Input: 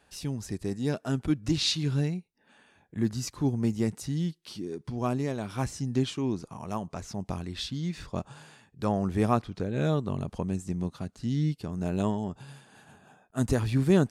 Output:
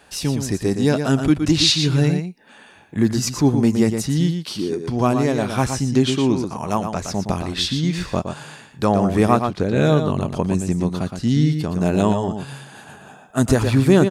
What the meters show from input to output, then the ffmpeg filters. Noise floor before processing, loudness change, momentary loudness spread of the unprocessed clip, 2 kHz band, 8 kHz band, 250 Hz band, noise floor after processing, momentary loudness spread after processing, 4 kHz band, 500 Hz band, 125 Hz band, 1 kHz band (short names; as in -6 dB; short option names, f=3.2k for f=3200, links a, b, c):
-67 dBFS, +11.0 dB, 11 LU, +12.5 dB, +12.5 dB, +11.0 dB, -47 dBFS, 9 LU, +12.0 dB, +11.5 dB, +9.5 dB, +12.0 dB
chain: -filter_complex "[0:a]lowshelf=f=180:g=-5.5,asplit=2[a][b];[b]adelay=116.6,volume=-7dB,highshelf=f=4k:g=-2.62[c];[a][c]amix=inputs=2:normalize=0,asplit=2[d][e];[e]alimiter=limit=-21.5dB:level=0:latency=1:release=496,volume=3dB[f];[d][f]amix=inputs=2:normalize=0,volume=6dB"